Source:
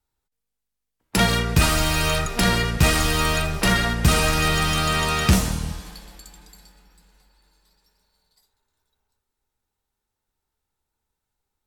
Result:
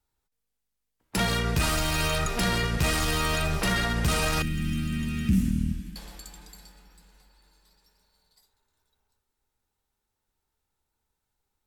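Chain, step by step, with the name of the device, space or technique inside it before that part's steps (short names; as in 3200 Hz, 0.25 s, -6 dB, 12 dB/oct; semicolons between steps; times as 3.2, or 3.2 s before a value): soft clipper into limiter (soft clip -9 dBFS, distortion -21 dB; limiter -17.5 dBFS, peak gain reduction 7 dB); 4.42–5.96 EQ curve 150 Hz 0 dB, 240 Hz +11 dB, 490 Hz -24 dB, 940 Hz -28 dB, 1600 Hz -13 dB, 2700 Hz -8 dB, 4100 Hz -17 dB, 12000 Hz -9 dB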